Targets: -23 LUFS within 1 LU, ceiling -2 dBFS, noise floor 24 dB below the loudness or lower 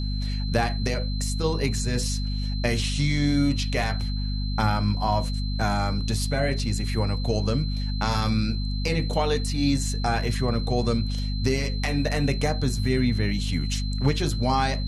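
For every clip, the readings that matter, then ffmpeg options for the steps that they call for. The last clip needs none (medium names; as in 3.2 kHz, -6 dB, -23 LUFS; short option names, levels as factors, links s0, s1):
hum 50 Hz; highest harmonic 250 Hz; hum level -25 dBFS; steady tone 4.1 kHz; tone level -37 dBFS; loudness -25.5 LUFS; peak level -8.5 dBFS; loudness target -23.0 LUFS
-> -af "bandreject=f=50:t=h:w=6,bandreject=f=100:t=h:w=6,bandreject=f=150:t=h:w=6,bandreject=f=200:t=h:w=6,bandreject=f=250:t=h:w=6"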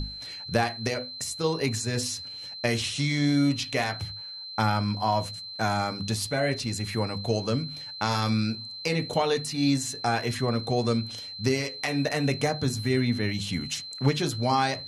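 hum not found; steady tone 4.1 kHz; tone level -37 dBFS
-> -af "bandreject=f=4100:w=30"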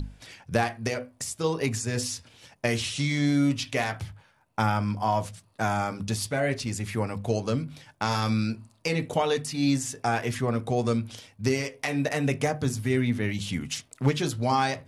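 steady tone not found; loudness -28.0 LUFS; peak level -10.0 dBFS; loudness target -23.0 LUFS
-> -af "volume=1.78"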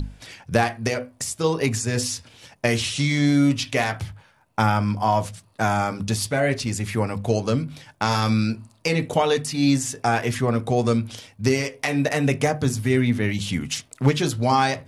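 loudness -23.0 LUFS; peak level -5.0 dBFS; noise floor -58 dBFS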